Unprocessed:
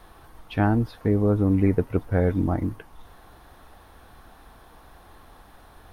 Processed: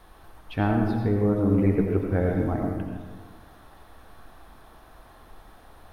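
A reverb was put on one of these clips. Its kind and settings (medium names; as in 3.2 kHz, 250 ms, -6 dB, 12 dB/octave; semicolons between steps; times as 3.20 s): algorithmic reverb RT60 1.5 s, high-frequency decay 0.55×, pre-delay 45 ms, DRR 1.5 dB; trim -3 dB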